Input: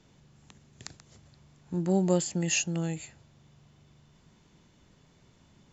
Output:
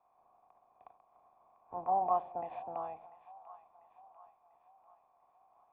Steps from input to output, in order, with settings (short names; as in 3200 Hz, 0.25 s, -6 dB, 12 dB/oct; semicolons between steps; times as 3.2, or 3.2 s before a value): spectral limiter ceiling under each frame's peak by 24 dB; vocal tract filter a; split-band echo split 750 Hz, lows 86 ms, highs 0.694 s, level -15.5 dB; gain +5 dB